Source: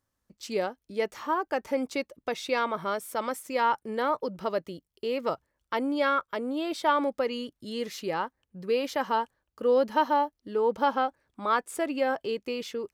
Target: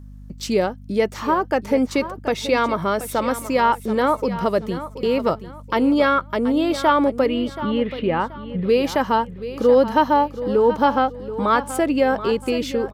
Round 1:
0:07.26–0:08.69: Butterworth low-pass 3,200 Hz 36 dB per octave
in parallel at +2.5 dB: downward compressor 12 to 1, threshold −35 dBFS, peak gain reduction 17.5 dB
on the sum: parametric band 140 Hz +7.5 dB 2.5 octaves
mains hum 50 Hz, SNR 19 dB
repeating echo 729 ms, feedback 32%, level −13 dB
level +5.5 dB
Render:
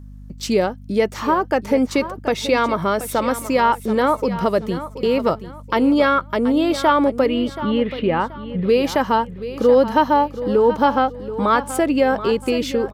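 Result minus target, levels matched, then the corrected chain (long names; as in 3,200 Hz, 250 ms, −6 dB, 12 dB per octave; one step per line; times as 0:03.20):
downward compressor: peak gain reduction −7 dB
0:07.26–0:08.69: Butterworth low-pass 3,200 Hz 36 dB per octave
in parallel at +2.5 dB: downward compressor 12 to 1, threshold −42.5 dBFS, peak gain reduction 24.5 dB
on the sum: parametric band 140 Hz +7.5 dB 2.5 octaves
mains hum 50 Hz, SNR 19 dB
repeating echo 729 ms, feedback 32%, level −13 dB
level +5.5 dB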